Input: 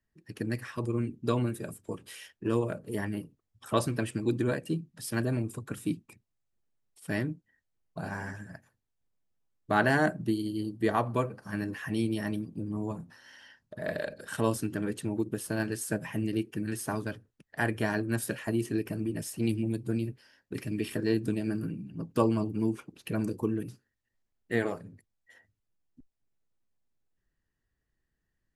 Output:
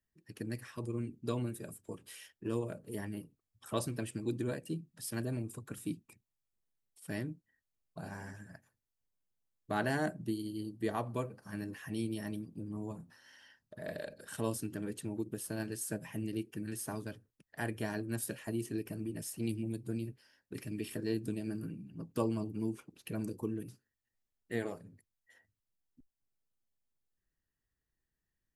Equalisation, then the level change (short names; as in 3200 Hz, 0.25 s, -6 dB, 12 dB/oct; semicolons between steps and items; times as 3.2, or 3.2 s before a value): high shelf 6900 Hz +6.5 dB; dynamic EQ 1400 Hz, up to -4 dB, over -44 dBFS, Q 0.96; -7.0 dB